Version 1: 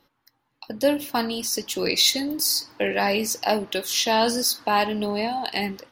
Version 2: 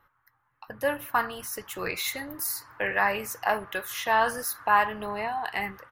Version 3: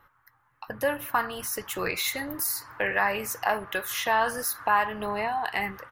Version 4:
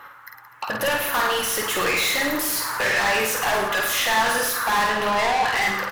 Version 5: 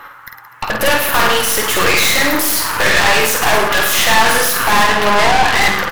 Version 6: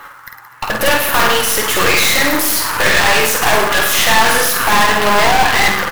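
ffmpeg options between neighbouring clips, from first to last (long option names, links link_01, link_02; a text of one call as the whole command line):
ffmpeg -i in.wav -af "firequalizer=gain_entry='entry(110,0);entry(230,-17);entry(430,-10);entry(760,-5);entry(1200,6);entry(1700,3);entry(2500,-8);entry(4700,-22);entry(7200,-12);entry(12000,-5)':delay=0.05:min_phase=1,volume=1.5dB" out.wav
ffmpeg -i in.wav -af "acompressor=threshold=-35dB:ratio=1.5,volume=5dB" out.wav
ffmpeg -i in.wav -filter_complex "[0:a]asplit=2[link_01][link_02];[link_02]highpass=frequency=720:poles=1,volume=32dB,asoftclip=type=tanh:threshold=-9.5dB[link_03];[link_01][link_03]amix=inputs=2:normalize=0,lowpass=frequency=7000:poles=1,volume=-6dB,aecho=1:1:50|107.5|173.6|249.7|337.1:0.631|0.398|0.251|0.158|0.1,volume=-6.5dB" out.wav
ffmpeg -i in.wav -af "aeval=exprs='0.282*(cos(1*acos(clip(val(0)/0.282,-1,1)))-cos(1*PI/2))+0.0794*(cos(4*acos(clip(val(0)/0.282,-1,1)))-cos(4*PI/2))':channel_layout=same,volume=7.5dB" out.wav
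ffmpeg -i in.wav -af "acrusher=bits=3:mode=log:mix=0:aa=0.000001" out.wav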